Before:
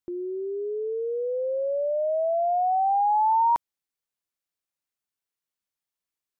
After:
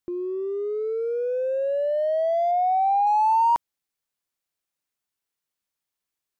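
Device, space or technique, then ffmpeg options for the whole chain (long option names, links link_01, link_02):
parallel distortion: -filter_complex "[0:a]asplit=2[link_01][link_02];[link_02]asoftclip=type=hard:threshold=-33dB,volume=-10.5dB[link_03];[link_01][link_03]amix=inputs=2:normalize=0,asettb=1/sr,asplit=3[link_04][link_05][link_06];[link_04]atrim=end=2.514[link_07];[link_05]atrim=start=2.51:end=3.07,asetpts=PTS-STARTPTS,afade=type=in:duration=0.004:curve=qsin,afade=type=out:start_time=0.556:duration=0.004:curve=qsin,bass=frequency=250:gain=4,treble=frequency=4000:gain=-14[link_08];[link_06]atrim=start=3.066[link_09];[link_07][link_08]acrossfade=duration=0.004:curve1=hsin:curve2=qsin[link_10];[link_10][link_09]acrossfade=duration=0.004:curve1=qsin:curve2=hsin,volume=1dB"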